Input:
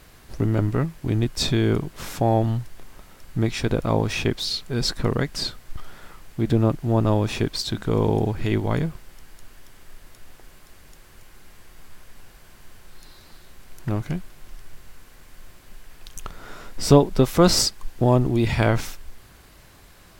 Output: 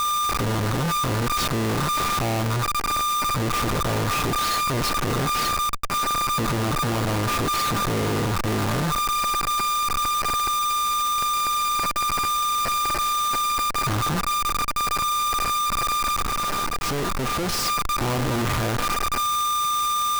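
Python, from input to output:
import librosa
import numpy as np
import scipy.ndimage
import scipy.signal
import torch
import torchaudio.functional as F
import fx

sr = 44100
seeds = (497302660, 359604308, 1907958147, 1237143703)

y = x + 10.0 ** (-25.0 / 20.0) * np.sin(2.0 * np.pi * 1200.0 * np.arange(len(x)) / sr)
y = fx.schmitt(y, sr, flips_db=-28.0)
y = fx.quant_companded(y, sr, bits=2, at=(16.23, 17.66))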